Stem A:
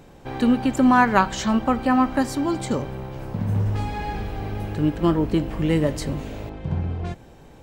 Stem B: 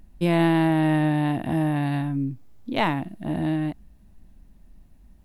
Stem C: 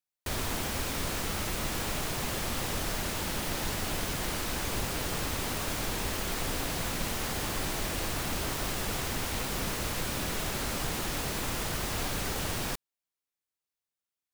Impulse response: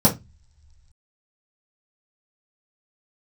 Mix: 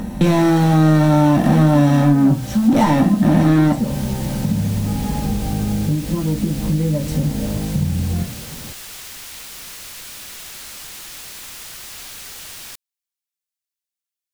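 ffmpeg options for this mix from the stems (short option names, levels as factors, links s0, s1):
-filter_complex "[0:a]acompressor=threshold=0.0501:ratio=6,adelay=1100,volume=0.447,asplit=2[s0][s1];[s1]volume=0.376[s2];[1:a]asplit=2[s3][s4];[s4]highpass=f=720:p=1,volume=63.1,asoftclip=type=tanh:threshold=0.335[s5];[s3][s5]amix=inputs=2:normalize=0,lowpass=f=6800:p=1,volume=0.501,volume=0.708,asplit=2[s6][s7];[s7]volume=0.266[s8];[2:a]tiltshelf=f=1300:g=-9,volume=0.501[s9];[3:a]atrim=start_sample=2205[s10];[s2][s8]amix=inputs=2:normalize=0[s11];[s11][s10]afir=irnorm=-1:irlink=0[s12];[s0][s6][s9][s12]amix=inputs=4:normalize=0,acompressor=threshold=0.141:ratio=2"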